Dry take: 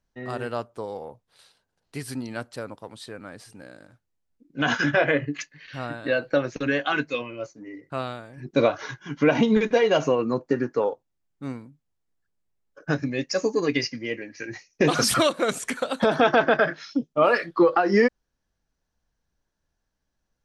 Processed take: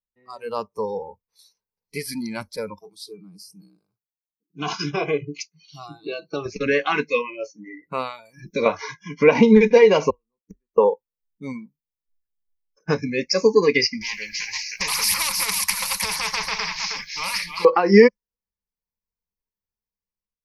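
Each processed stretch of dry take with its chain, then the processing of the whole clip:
0:02.81–0:06.46: high-pass filter 94 Hz 6 dB per octave + parametric band 930 Hz −12.5 dB 0.21 octaves + phaser with its sweep stopped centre 360 Hz, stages 8
0:08.25–0:08.66: high-shelf EQ 2,600 Hz +7.5 dB + downward compressor 2 to 1, threshold −29 dBFS
0:10.10–0:10.78: mu-law and A-law mismatch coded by A + gate with flip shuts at −21 dBFS, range −40 dB
0:14.01–0:17.65: guitar amp tone stack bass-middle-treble 10-0-10 + single-tap delay 314 ms −14.5 dB + every bin compressed towards the loudest bin 4 to 1
whole clip: automatic gain control gain up to 6.5 dB; noise reduction from a noise print of the clip's start 23 dB; EQ curve with evenly spaced ripples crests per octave 0.86, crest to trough 11 dB; level −2 dB

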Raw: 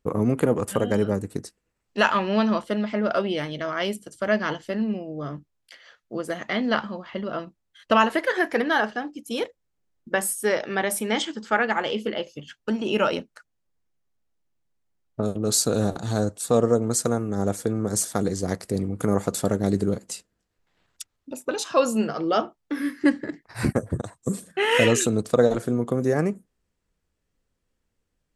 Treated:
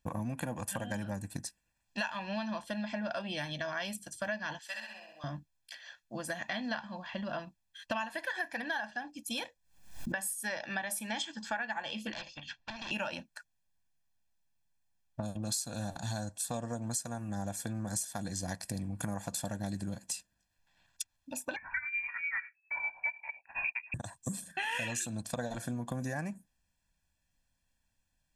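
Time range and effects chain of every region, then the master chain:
0:04.59–0:05.24: high-pass filter 1,300 Hz + flutter between parallel walls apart 11.1 metres, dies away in 0.84 s
0:09.44–0:10.17: double-tracking delay 25 ms −12.5 dB + background raised ahead of every attack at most 100 dB per second
0:12.12–0:12.91: hard clipping −27.5 dBFS + Gaussian smoothing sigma 2 samples + every bin compressed towards the loudest bin 2 to 1
0:21.56–0:23.94: amplitude tremolo 9.9 Hz, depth 64% + voice inversion scrambler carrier 2,600 Hz
whole clip: tilt shelving filter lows −4 dB, about 1,200 Hz; comb filter 1.2 ms, depth 93%; downward compressor 6 to 1, threshold −29 dBFS; level −4.5 dB

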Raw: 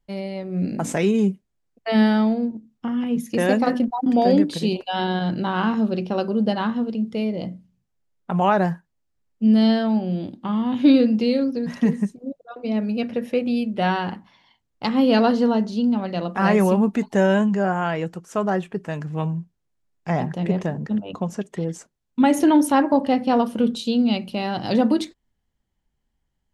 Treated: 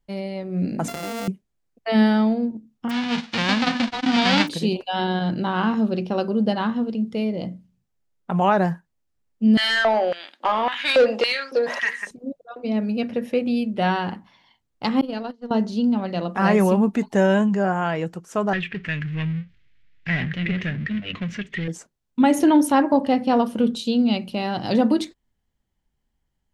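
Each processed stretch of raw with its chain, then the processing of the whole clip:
0:00.88–0:01.28: samples sorted by size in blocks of 64 samples + downward compressor 8 to 1, threshold −27 dBFS
0:02.89–0:04.47: spectral envelope flattened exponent 0.1 + low-pass filter 4,200 Hz 24 dB per octave + one half of a high-frequency compander encoder only
0:09.57–0:12.11: auto-filter high-pass square 1.8 Hz 560–1,700 Hz + mid-hump overdrive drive 18 dB, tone 3,200 Hz, clips at −8 dBFS
0:15.01–0:15.51: noise gate −16 dBFS, range −36 dB + downward compressor 1.5 to 1, threshold −37 dBFS
0:18.53–0:21.68: power curve on the samples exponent 0.7 + drawn EQ curve 100 Hz 0 dB, 890 Hz −18 dB, 2,000 Hz +10 dB, 3,300 Hz +5 dB, 11,000 Hz −28 dB
whole clip: no processing

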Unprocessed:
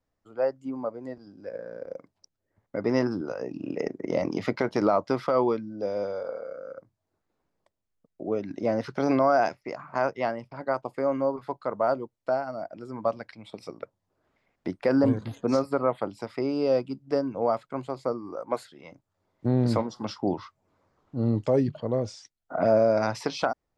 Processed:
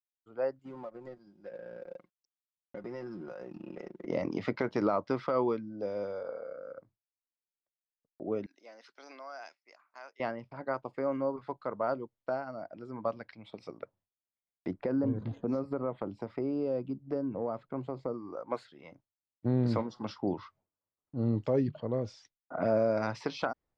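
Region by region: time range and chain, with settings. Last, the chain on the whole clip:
0:00.59–0:04.06: mu-law and A-law mismatch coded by A + comb filter 5.6 ms, depth 63% + downward compressor 4 to 1, threshold −35 dBFS
0:08.46–0:10.20: high-pass filter 220 Hz 24 dB per octave + first difference
0:14.70–0:18.14: tilt shelving filter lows +6.5 dB, about 1,100 Hz + downward compressor 2 to 1, threshold −28 dBFS
whole clip: downward expander −53 dBFS; low-pass filter 4,300 Hz 12 dB per octave; dynamic equaliser 710 Hz, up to −4 dB, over −36 dBFS, Q 2.2; level −4.5 dB

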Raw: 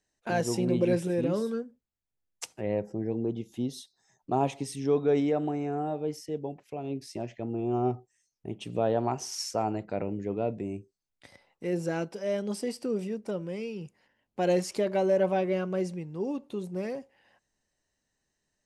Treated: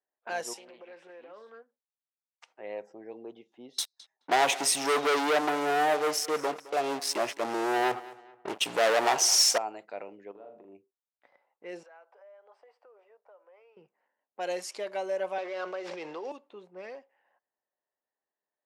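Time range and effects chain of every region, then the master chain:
0:00.53–0:02.48: high-pass filter 840 Hz 6 dB per octave + downward compressor, threshold −36 dBFS + highs frequency-modulated by the lows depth 0.16 ms
0:03.78–0:09.58: leveller curve on the samples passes 5 + repeating echo 214 ms, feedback 37%, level −19 dB
0:10.31–0:10.75: parametric band 2,100 Hz −15 dB 0.65 octaves + downward compressor 16 to 1, threshold −35 dBFS + flutter between parallel walls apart 7 metres, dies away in 0.48 s
0:11.83–0:13.77: high-pass filter 620 Hz 24 dB per octave + high-shelf EQ 2,000 Hz −10.5 dB + downward compressor 5 to 1, threshold −46 dBFS
0:15.38–0:16.32: running median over 15 samples + three-way crossover with the lows and the highs turned down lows −19 dB, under 320 Hz, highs −23 dB, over 6,400 Hz + envelope flattener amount 100%
whole clip: high-pass filter 680 Hz 12 dB per octave; low-pass that shuts in the quiet parts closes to 980 Hz, open at −31.5 dBFS; level −1.5 dB

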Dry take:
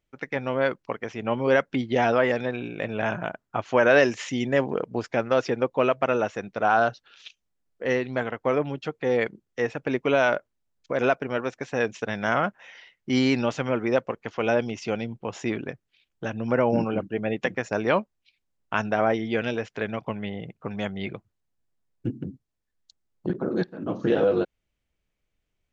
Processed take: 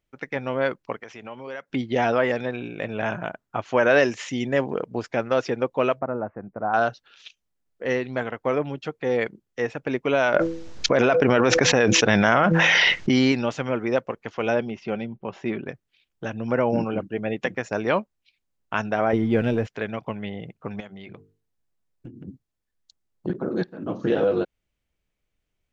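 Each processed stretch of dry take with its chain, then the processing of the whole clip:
0:01.00–0:01.70: high-pass filter 55 Hz + low-shelf EQ 440 Hz −10 dB + downward compressor 2.5 to 1, threshold −36 dBFS
0:05.99–0:06.74: Gaussian smoothing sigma 7.1 samples + dynamic equaliser 440 Hz, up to −6 dB, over −39 dBFS, Q 2.1
0:10.34–0:13.32: Butterworth low-pass 6,700 Hz + hum removal 165.2 Hz, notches 3 + envelope flattener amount 100%
0:14.60–0:15.66: high-frequency loss of the air 200 metres + comb filter 5.2 ms, depth 34% + one half of a high-frequency compander decoder only
0:19.13–0:19.67: mu-law and A-law mismatch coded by mu + spectral tilt −3 dB per octave
0:20.80–0:22.28: mains-hum notches 50/100/150/200/250/300/350/400/450 Hz + downward compressor 5 to 1, threshold −37 dBFS
whole clip: no processing

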